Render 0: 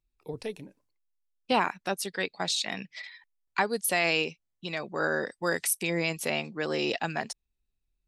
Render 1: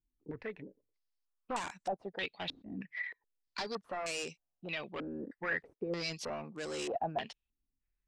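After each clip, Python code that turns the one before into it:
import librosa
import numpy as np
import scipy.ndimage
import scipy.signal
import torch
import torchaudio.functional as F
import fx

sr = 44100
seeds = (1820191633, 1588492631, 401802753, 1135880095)

y = np.clip(x, -10.0 ** (-29.5 / 20.0), 10.0 ** (-29.5 / 20.0))
y = fx.filter_held_lowpass(y, sr, hz=3.2, low_hz=280.0, high_hz=7900.0)
y = y * librosa.db_to_amplitude(-6.5)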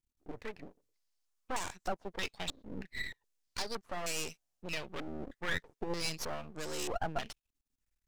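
y = fx.peak_eq(x, sr, hz=6600.0, db=6.0, octaves=1.1)
y = np.maximum(y, 0.0)
y = y * librosa.db_to_amplitude(3.5)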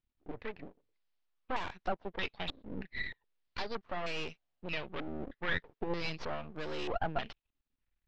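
y = scipy.signal.sosfilt(scipy.signal.butter(4, 3800.0, 'lowpass', fs=sr, output='sos'), x)
y = y * librosa.db_to_amplitude(1.5)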